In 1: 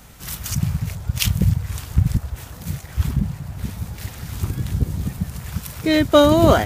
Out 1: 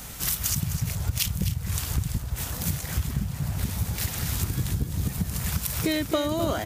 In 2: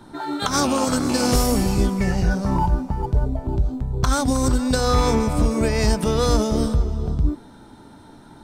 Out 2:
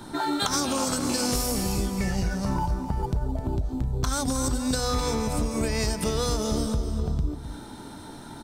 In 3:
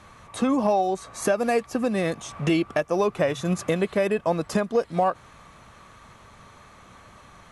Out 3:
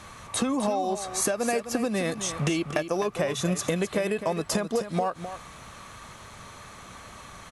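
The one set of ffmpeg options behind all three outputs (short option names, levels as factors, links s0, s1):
-filter_complex "[0:a]highshelf=f=3500:g=8,acompressor=threshold=0.0501:ratio=10,asplit=2[s0][s1];[s1]aecho=0:1:258:0.299[s2];[s0][s2]amix=inputs=2:normalize=0,volume=1.41"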